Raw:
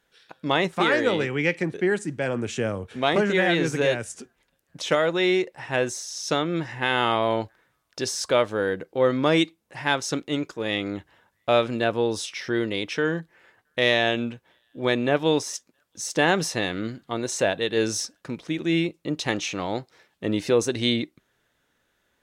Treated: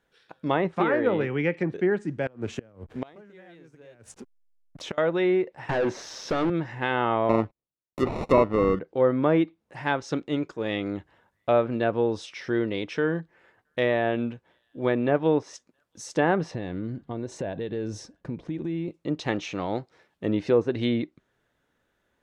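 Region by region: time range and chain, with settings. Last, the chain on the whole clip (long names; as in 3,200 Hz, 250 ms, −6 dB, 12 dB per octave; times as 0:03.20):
0:02.26–0:04.98: slack as between gear wheels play −39 dBFS + gate with flip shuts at −17 dBFS, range −27 dB
0:05.69–0:06.50: downward compressor 3 to 1, threshold −32 dBFS + band-pass filter 160–2,600 Hz + leveller curve on the samples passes 5
0:07.29–0:08.79: noise gate −50 dBFS, range −33 dB + parametric band 230 Hz +7.5 dB 2.3 octaves + sample-rate reduction 1,600 Hz
0:16.51–0:18.88: spectral tilt −2.5 dB per octave + notch filter 1,300 Hz, Q 8.6 + downward compressor 4 to 1, threshold −28 dBFS
whole clip: treble cut that deepens with the level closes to 1,800 Hz, closed at −17 dBFS; high-shelf EQ 2,000 Hz −9 dB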